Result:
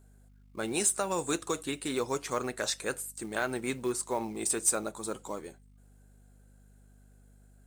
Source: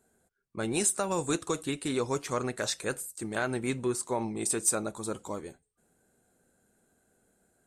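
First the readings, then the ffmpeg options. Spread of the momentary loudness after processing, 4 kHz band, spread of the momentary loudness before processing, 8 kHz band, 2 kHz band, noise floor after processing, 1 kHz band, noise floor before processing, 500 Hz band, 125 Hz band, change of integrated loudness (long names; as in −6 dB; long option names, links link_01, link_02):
11 LU, 0.0 dB, 10 LU, 0.0 dB, 0.0 dB, −58 dBFS, −0.5 dB, −79 dBFS, −1.5 dB, −6.5 dB, −1.0 dB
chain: -af "highpass=frequency=260:poles=1,aeval=exprs='val(0)+0.00141*(sin(2*PI*50*n/s)+sin(2*PI*2*50*n/s)/2+sin(2*PI*3*50*n/s)/3+sin(2*PI*4*50*n/s)/4+sin(2*PI*5*50*n/s)/5)':channel_layout=same,acrusher=bits=6:mode=log:mix=0:aa=0.000001"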